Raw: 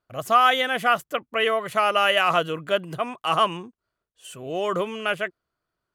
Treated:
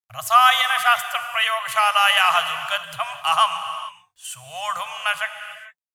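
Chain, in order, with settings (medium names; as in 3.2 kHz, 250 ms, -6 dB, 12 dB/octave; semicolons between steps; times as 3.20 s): elliptic band-stop 110–800 Hz, stop band 60 dB; peaking EQ 11 kHz +6.5 dB 2 oct; bit crusher 12-bit; reverberation, pre-delay 3 ms, DRR 9 dB; trim +4 dB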